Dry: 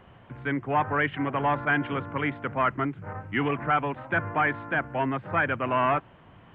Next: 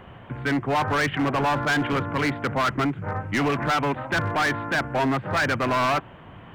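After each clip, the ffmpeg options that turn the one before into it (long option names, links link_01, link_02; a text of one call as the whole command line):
ffmpeg -i in.wav -filter_complex "[0:a]asplit=2[link_01][link_02];[link_02]alimiter=limit=-20dB:level=0:latency=1:release=32,volume=-2dB[link_03];[link_01][link_03]amix=inputs=2:normalize=0,asoftclip=type=hard:threshold=-22.5dB,volume=3dB" out.wav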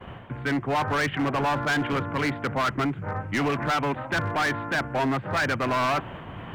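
ffmpeg -i in.wav -af "agate=range=-33dB:threshold=-42dB:ratio=3:detection=peak,areverse,acompressor=mode=upward:threshold=-26dB:ratio=2.5,areverse,volume=-2dB" out.wav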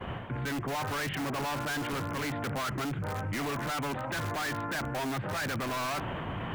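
ffmpeg -i in.wav -filter_complex "[0:a]asplit=2[link_01][link_02];[link_02]aeval=exprs='(mod(15*val(0)+1,2)-1)/15':channel_layout=same,volume=-6dB[link_03];[link_01][link_03]amix=inputs=2:normalize=0,alimiter=level_in=3.5dB:limit=-24dB:level=0:latency=1:release=12,volume=-3.5dB" out.wav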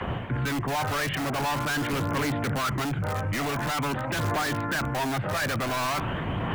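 ffmpeg -i in.wav -filter_complex "[0:a]acrossover=split=410|870|3700[link_01][link_02][link_03][link_04];[link_03]acompressor=mode=upward:threshold=-43dB:ratio=2.5[link_05];[link_01][link_02][link_05][link_04]amix=inputs=4:normalize=0,aphaser=in_gain=1:out_gain=1:delay=1.8:decay=0.26:speed=0.46:type=triangular,volume=5dB" out.wav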